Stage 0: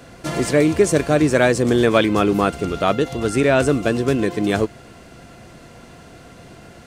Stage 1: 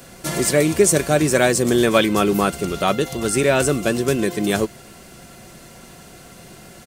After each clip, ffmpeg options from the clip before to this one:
ffmpeg -i in.wav -af "aemphasis=mode=production:type=50fm,aecho=1:1:5.3:0.32,volume=-1dB" out.wav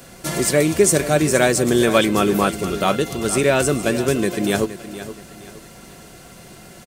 ffmpeg -i in.wav -af "aecho=1:1:469|938|1407:0.224|0.0761|0.0259" out.wav

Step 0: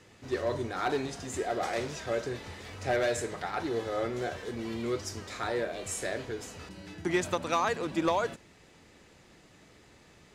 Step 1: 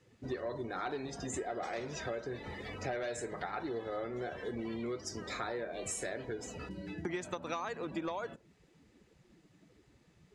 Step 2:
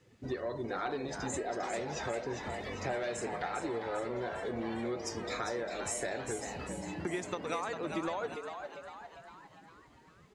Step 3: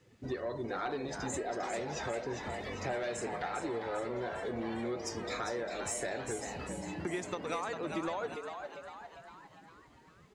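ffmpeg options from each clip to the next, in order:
ffmpeg -i in.wav -af "afftdn=noise_reduction=17:noise_floor=-46,equalizer=frequency=93:width_type=o:width=0.33:gain=-9.5,acompressor=threshold=-40dB:ratio=6,volume=4dB" out.wav
ffmpeg -i in.wav -filter_complex "[0:a]asplit=7[link_01][link_02][link_03][link_04][link_05][link_06][link_07];[link_02]adelay=401,afreqshift=120,volume=-7dB[link_08];[link_03]adelay=802,afreqshift=240,volume=-12.5dB[link_09];[link_04]adelay=1203,afreqshift=360,volume=-18dB[link_10];[link_05]adelay=1604,afreqshift=480,volume=-23.5dB[link_11];[link_06]adelay=2005,afreqshift=600,volume=-29.1dB[link_12];[link_07]adelay=2406,afreqshift=720,volume=-34.6dB[link_13];[link_01][link_08][link_09][link_10][link_11][link_12][link_13]amix=inputs=7:normalize=0,volume=1.5dB" out.wav
ffmpeg -i in.wav -af "asoftclip=type=tanh:threshold=-23dB" out.wav

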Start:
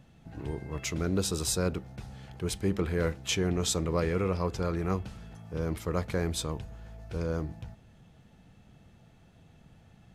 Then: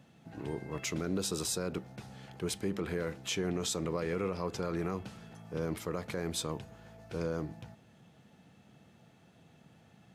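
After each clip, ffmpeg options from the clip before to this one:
ffmpeg -i in.wav -af "highpass=150,alimiter=limit=-24dB:level=0:latency=1:release=78" out.wav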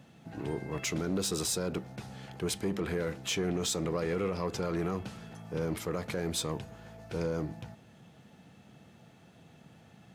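ffmpeg -i in.wav -af "asoftclip=type=tanh:threshold=-27.5dB,volume=4dB" out.wav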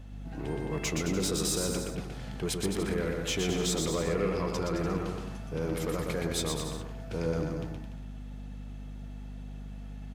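ffmpeg -i in.wav -filter_complex "[0:a]aeval=exprs='val(0)+0.00631*(sin(2*PI*50*n/s)+sin(2*PI*2*50*n/s)/2+sin(2*PI*3*50*n/s)/3+sin(2*PI*4*50*n/s)/4+sin(2*PI*5*50*n/s)/5)':channel_layout=same,asplit=2[link_01][link_02];[link_02]aecho=0:1:120|216|292.8|354.2|403.4:0.631|0.398|0.251|0.158|0.1[link_03];[link_01][link_03]amix=inputs=2:normalize=0" out.wav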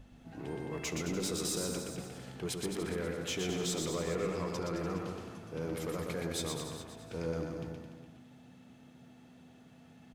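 ffmpeg -i in.wav -af "bandreject=frequency=50:width_type=h:width=6,bandreject=frequency=100:width_type=h:width=6,bandreject=frequency=150:width_type=h:width=6,bandreject=frequency=200:width_type=h:width=6,aecho=1:1:69|415:0.106|0.188,volume=-5dB" out.wav

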